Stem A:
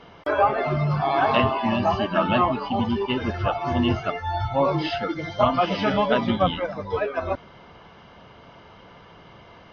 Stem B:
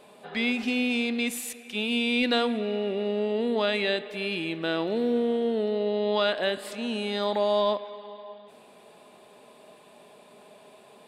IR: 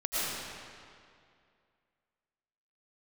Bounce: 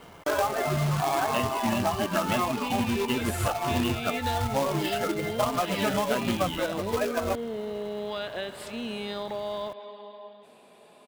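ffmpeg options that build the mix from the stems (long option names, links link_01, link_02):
-filter_complex "[0:a]lowpass=4500,acrusher=bits=2:mode=log:mix=0:aa=0.000001,volume=-1.5dB[link_01];[1:a]acompressor=threshold=-28dB:ratio=6,adelay=1950,volume=-2dB[link_02];[link_01][link_02]amix=inputs=2:normalize=0,acompressor=threshold=-22dB:ratio=6"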